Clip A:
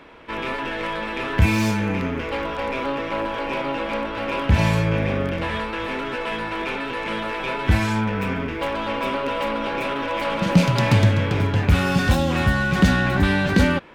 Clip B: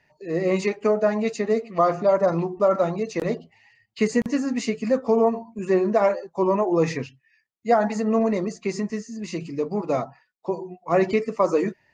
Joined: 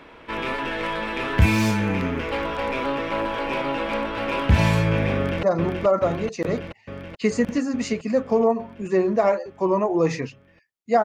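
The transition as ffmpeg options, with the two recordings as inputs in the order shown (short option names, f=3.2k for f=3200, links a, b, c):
-filter_complex "[0:a]apad=whole_dur=11.04,atrim=end=11.04,atrim=end=5.432[a];[1:a]atrim=start=2.198:end=7.81[b];[a][b]acrossfade=d=0.004:c1=hsin:c2=hsin,asplit=2[c][d];[d]afade=t=in:st=5.15:d=0.01,afade=t=out:st=5.43:d=0.01,aecho=0:1:430|860|1290|1720|2150|2580|3010|3440|3870|4300|4730|5160:0.595662|0.446747|0.33506|0.251295|0.188471|0.141353|0.106015|0.0795113|0.0596335|0.0447251|0.0335438|0.0251579[e];[c][e]amix=inputs=2:normalize=0"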